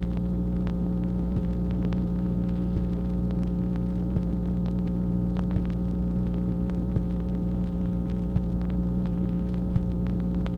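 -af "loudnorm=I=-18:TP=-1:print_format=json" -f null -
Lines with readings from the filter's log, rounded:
"input_i" : "-27.8",
"input_tp" : "-10.7",
"input_lra" : "0.4",
"input_thresh" : "-37.8",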